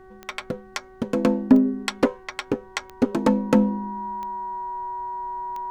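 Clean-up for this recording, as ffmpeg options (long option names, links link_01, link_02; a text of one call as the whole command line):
ffmpeg -i in.wav -af "adeclick=threshold=4,bandreject=frequency=376.7:width_type=h:width=4,bandreject=frequency=753.4:width_type=h:width=4,bandreject=frequency=1130.1:width_type=h:width=4,bandreject=frequency=1506.8:width_type=h:width=4,bandreject=frequency=1883.5:width_type=h:width=4,bandreject=frequency=960:width=30,agate=range=-21dB:threshold=-38dB" out.wav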